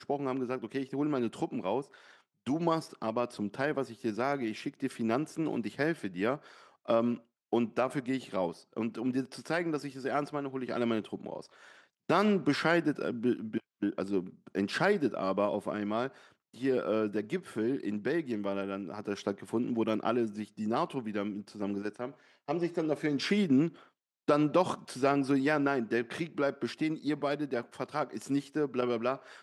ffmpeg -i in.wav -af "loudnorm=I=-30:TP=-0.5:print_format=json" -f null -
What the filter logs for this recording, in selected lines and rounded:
"input_i" : "-32.6",
"input_tp" : "-12.7",
"input_lra" : "4.0",
"input_thresh" : "-42.8",